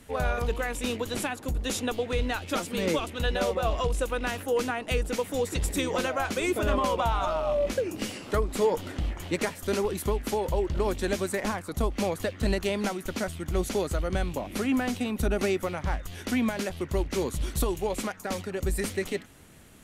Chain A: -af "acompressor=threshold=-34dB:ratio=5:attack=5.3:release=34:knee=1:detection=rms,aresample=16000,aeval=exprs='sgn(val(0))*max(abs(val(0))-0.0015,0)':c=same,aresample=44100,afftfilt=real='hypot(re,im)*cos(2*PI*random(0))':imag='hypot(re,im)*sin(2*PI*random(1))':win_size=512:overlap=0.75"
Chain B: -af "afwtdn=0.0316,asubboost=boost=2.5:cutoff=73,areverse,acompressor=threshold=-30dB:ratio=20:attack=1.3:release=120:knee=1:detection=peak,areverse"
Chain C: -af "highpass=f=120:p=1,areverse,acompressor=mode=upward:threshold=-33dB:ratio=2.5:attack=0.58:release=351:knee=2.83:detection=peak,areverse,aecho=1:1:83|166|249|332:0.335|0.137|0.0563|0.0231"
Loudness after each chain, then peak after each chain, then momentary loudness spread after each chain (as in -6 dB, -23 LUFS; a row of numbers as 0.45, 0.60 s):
-44.0, -37.5, -29.5 LUFS; -28.5, -24.5, -13.5 dBFS; 3, 2, 6 LU